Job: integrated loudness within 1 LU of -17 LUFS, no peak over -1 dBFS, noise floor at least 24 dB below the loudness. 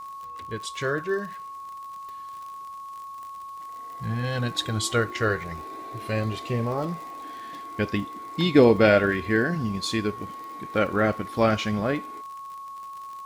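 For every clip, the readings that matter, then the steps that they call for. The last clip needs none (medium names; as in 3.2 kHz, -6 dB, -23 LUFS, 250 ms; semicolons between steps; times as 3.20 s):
tick rate 56 per s; steady tone 1.1 kHz; tone level -36 dBFS; loudness -25.0 LUFS; peak level -5.0 dBFS; loudness target -17.0 LUFS
-> de-click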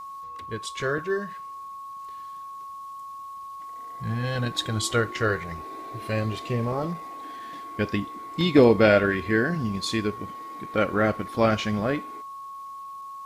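tick rate 0.45 per s; steady tone 1.1 kHz; tone level -36 dBFS
-> band-stop 1.1 kHz, Q 30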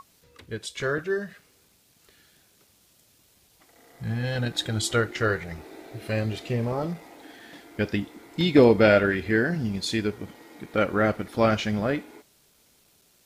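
steady tone not found; loudness -25.0 LUFS; peak level -5.0 dBFS; loudness target -17.0 LUFS
-> trim +8 dB; peak limiter -1 dBFS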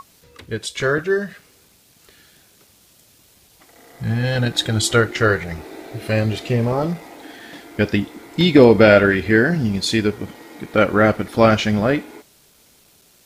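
loudness -17.5 LUFS; peak level -1.0 dBFS; noise floor -54 dBFS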